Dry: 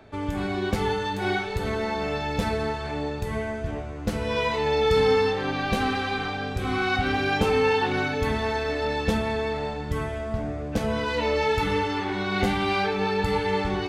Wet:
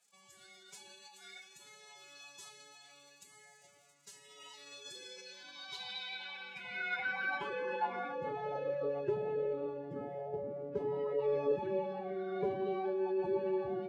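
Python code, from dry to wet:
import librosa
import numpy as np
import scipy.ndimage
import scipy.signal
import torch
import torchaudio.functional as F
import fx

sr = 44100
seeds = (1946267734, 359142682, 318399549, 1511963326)

y = fx.dmg_crackle(x, sr, seeds[0], per_s=110.0, level_db=-38.0)
y = fx.pitch_keep_formants(y, sr, semitones=11.5)
y = fx.filter_sweep_bandpass(y, sr, from_hz=7500.0, to_hz=460.0, start_s=5.05, end_s=8.88, q=2.1)
y = F.gain(torch.from_numpy(y), -5.0).numpy()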